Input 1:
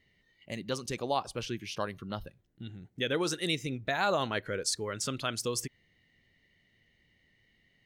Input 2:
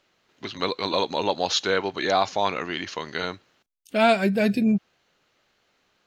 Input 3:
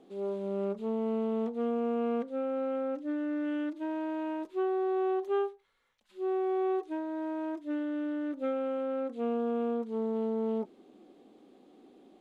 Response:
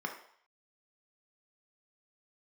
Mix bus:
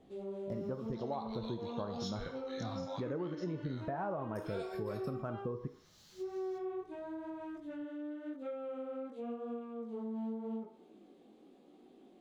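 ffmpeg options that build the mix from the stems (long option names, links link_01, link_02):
-filter_complex "[0:a]lowpass=frequency=1200:width=0.5412,lowpass=frequency=1200:width=1.3066,volume=2dB,asplit=3[link_01][link_02][link_03];[link_02]volume=-11dB[link_04];[1:a]highpass=420,acompressor=mode=upward:threshold=-30dB:ratio=2.5,aexciter=amount=5.5:drive=5.7:freq=3500,adelay=500,volume=-18.5dB,asplit=2[link_05][link_06];[link_06]volume=-7.5dB[link_07];[2:a]volume=0.5dB,asplit=2[link_08][link_09];[link_09]volume=-16dB[link_10];[link_03]apad=whole_len=289551[link_11];[link_05][link_11]sidechaincompress=threshold=-52dB:ratio=3:attack=41:release=274[link_12];[link_12][link_08]amix=inputs=2:normalize=0,flanger=delay=16.5:depth=7.3:speed=0.93,acompressor=threshold=-39dB:ratio=4,volume=0dB[link_13];[3:a]atrim=start_sample=2205[link_14];[link_04][link_07][link_10]amix=inputs=3:normalize=0[link_15];[link_15][link_14]afir=irnorm=-1:irlink=0[link_16];[link_01][link_13][link_16]amix=inputs=3:normalize=0,acompressor=threshold=-35dB:ratio=6"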